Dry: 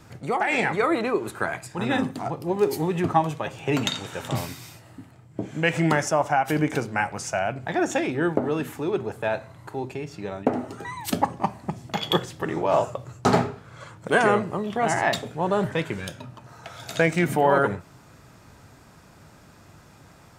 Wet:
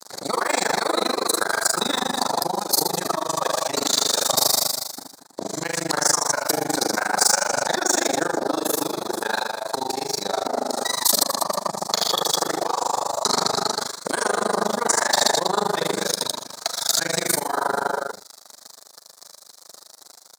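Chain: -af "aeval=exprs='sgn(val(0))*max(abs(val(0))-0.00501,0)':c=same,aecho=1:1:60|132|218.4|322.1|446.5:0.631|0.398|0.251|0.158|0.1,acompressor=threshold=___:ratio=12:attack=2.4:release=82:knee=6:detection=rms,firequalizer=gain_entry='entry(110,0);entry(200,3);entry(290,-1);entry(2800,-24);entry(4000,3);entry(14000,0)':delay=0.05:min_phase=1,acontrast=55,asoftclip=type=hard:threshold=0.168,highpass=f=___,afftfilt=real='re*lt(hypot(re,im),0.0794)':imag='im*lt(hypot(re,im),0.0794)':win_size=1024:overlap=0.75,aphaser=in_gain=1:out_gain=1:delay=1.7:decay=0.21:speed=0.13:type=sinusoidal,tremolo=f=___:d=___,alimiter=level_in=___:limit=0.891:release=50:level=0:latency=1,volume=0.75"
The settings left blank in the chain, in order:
0.0501, 820, 25, 1, 14.1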